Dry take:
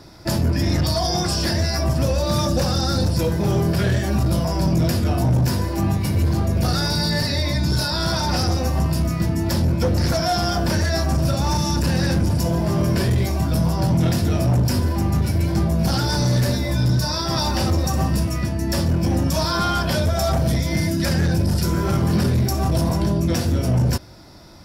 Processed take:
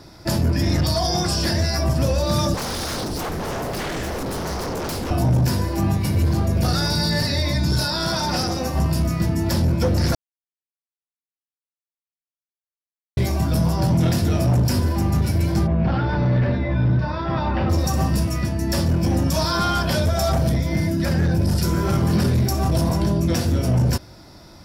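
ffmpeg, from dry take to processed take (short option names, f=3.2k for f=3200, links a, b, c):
-filter_complex "[0:a]asettb=1/sr,asplit=3[a][b][c];[a]atrim=end=2.544[d];[b]atrim=start=2.54:end=5.11,asetpts=PTS-STARTPTS,afade=t=in:d=0.004:c=qsin,afade=t=out:st=2.566:d=0.004:c=qsin,aeval=exprs='0.0841*(abs(mod(val(0)/0.0841+3,4)-2)-1)':c=same[e];[c]atrim=start=5.106[f];[d][e]acrossfade=d=0.004:c1=hsin:c2=qsin[g];[g][f]acrossfade=d=0.004:c1=qsin:c2=hsin,asettb=1/sr,asplit=3[h][i][j];[h]atrim=end=7.904[k];[i]atrim=start=7.9:end=8.75,asetpts=PTS-STARTPTS,afade=t=in:d=0.004:c=qsin,afade=t=out:st=0.846:d=0.004:c=qsin,equalizer=f=81:w=1.5:g=-10[l];[j]atrim=start=8.746[m];[k][l]acrossfade=d=0.004:c1=hsin:c2=qsin[n];[n][m]acrossfade=d=0.004:c1=qsin:c2=hsin,asplit=3[o][p][q];[o]afade=t=out:st=15.66:d=0.02[r];[p]lowpass=f=2.7k:w=0.5412,lowpass=f=2.7k:w=1.3066,afade=t=in:st=15.66:d=0.02,afade=t=out:st=17.69:d=0.02[s];[q]afade=t=in:st=17.69:d=0.02[t];[r][s][t]amix=inputs=3:normalize=0,asettb=1/sr,asplit=3[u][v][w];[u]atrim=end=20.494[x];[v]atrim=start=20.49:end=21.42,asetpts=PTS-STARTPTS,afade=t=in:d=0.004:c=qsin,afade=t=out:st=0.926:d=0.004:c=qsin,equalizer=f=7.6k:t=o:w=2.8:g=-7.5[y];[w]atrim=start=21.416[z];[x][y]acrossfade=d=0.004:c1=hsin:c2=qsin[aa];[aa][z]acrossfade=d=0.004:c1=qsin:c2=hsin,asplit=3[ab][ac][ad];[ab]atrim=end=10.15,asetpts=PTS-STARTPTS,afade=t=out:st=10.146:d=0.004:c=hsin[ae];[ac]atrim=start=10.15:end=13.17,asetpts=PTS-STARTPTS,volume=0[af];[ad]atrim=start=13.17,asetpts=PTS-STARTPTS,afade=t=in:d=0.004:c=hsin[ag];[ae][af][ag]concat=n=3:v=0:a=1"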